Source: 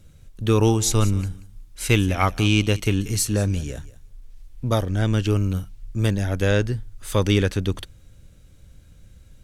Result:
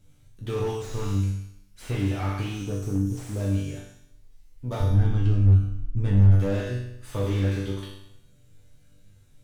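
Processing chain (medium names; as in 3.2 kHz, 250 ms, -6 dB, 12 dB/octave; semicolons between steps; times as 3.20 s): 2.48–3.40 s: inverse Chebyshev band-stop 2–4 kHz, stop band 40 dB; 4.80–6.31 s: RIAA curve playback; in parallel at -2 dB: compression, threshold -18 dBFS, peak gain reduction 13 dB; on the sum: chord resonator G2 major, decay 0.78 s; slew-rate limiter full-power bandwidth 13 Hz; trim +7.5 dB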